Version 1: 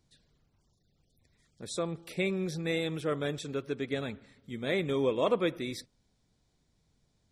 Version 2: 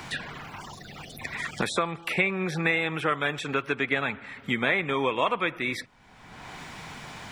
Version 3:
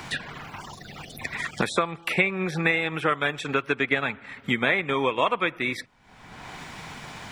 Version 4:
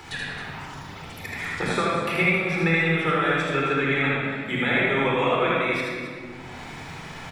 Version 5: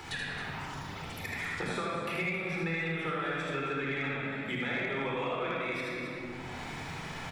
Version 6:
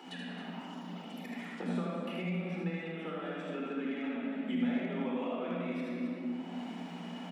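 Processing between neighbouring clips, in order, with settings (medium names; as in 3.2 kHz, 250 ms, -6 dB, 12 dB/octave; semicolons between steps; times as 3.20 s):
high-order bell 1.5 kHz +13.5 dB 2.3 oct; three bands compressed up and down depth 100%
transient shaper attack +2 dB, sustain -4 dB; trim +1.5 dB
loudspeakers at several distances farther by 27 m -3 dB, 92 m -10 dB; simulated room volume 3400 m³, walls mixed, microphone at 4.1 m; trim -6.5 dB
compression 2.5:1, threshold -32 dBFS, peak gain reduction 10.5 dB; saturation -19.5 dBFS, distortion -26 dB; trim -2 dB
rippled Chebyshev high-pass 170 Hz, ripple 9 dB; small resonant body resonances 220/2900 Hz, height 15 dB, ringing for 20 ms; trim -4 dB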